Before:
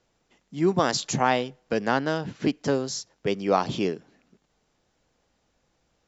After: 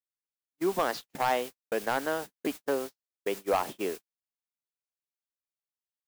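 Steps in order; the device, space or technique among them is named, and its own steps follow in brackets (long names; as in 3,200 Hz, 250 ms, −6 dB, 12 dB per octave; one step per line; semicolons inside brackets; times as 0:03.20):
aircraft radio (band-pass filter 390–2,600 Hz; hard clipping −17 dBFS, distortion −13 dB; white noise bed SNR 11 dB; noise gate −33 dBFS, range −58 dB)
level −2 dB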